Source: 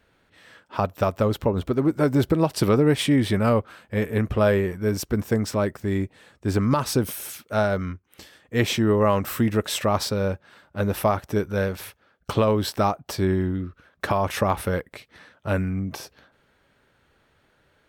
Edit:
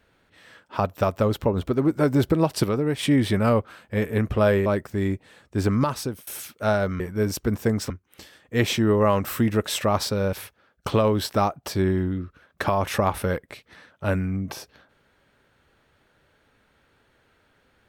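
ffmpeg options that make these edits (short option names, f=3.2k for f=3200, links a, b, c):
-filter_complex "[0:a]asplit=8[a][b][c][d][e][f][g][h];[a]atrim=end=2.642[i];[b]atrim=start=2.638:end=3.032,asetpts=PTS-STARTPTS,volume=-5.5dB[j];[c]atrim=start=3.028:end=4.662[k];[d]atrim=start=5.558:end=7.17,asetpts=PTS-STARTPTS,afade=t=out:st=1.102:d=0.51:silence=0.0749894[l];[e]atrim=start=7.17:end=7.902,asetpts=PTS-STARTPTS,afade=t=in:d=0.004:c=hsin:silence=0.0749894[m];[f]atrim=start=4.658:end=5.562[n];[g]atrim=start=7.898:end=10.332[o];[h]atrim=start=11.758[p];[i][j]acrossfade=d=0.004:c1=hsin:c2=hsin[q];[q][k]acrossfade=d=0.004:c1=hsin:c2=hsin[r];[l][m]concat=n=2:v=0:a=1[s];[r][s]acrossfade=d=0.004:c1=hsin:c2=hsin[t];[t][n]acrossfade=d=0.004:c1=hsin:c2=hsin[u];[u][o]acrossfade=d=0.004:c1=hsin:c2=hsin[v];[v][p]acrossfade=d=0.004:c1=hsin:c2=hsin"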